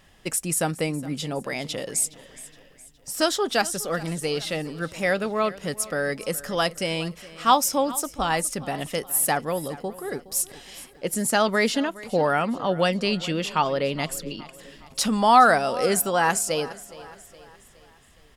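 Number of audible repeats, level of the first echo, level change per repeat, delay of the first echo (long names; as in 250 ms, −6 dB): 3, −18.5 dB, −6.0 dB, 416 ms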